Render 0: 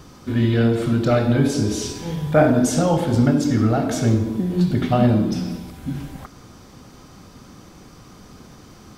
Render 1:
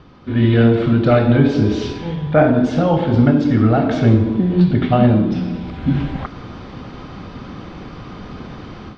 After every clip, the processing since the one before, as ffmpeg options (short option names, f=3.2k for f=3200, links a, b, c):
-af "lowpass=f=3.7k:w=0.5412,lowpass=f=3.7k:w=1.3066,dynaudnorm=f=240:g=3:m=12.5dB,volume=-1dB"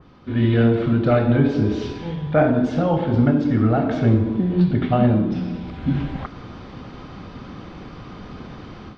-af "adynamicequalizer=threshold=0.02:dfrequency=2600:dqfactor=0.7:tfrequency=2600:tqfactor=0.7:attack=5:release=100:ratio=0.375:range=2.5:mode=cutabove:tftype=highshelf,volume=-4dB"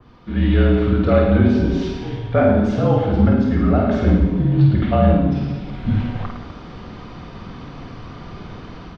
-af "afreqshift=-39,aecho=1:1:50|107.5|173.6|249.7|337.1:0.631|0.398|0.251|0.158|0.1"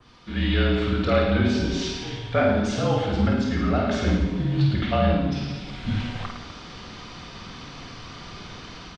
-af "crystalizer=i=9:c=0,aresample=22050,aresample=44100,volume=-7.5dB"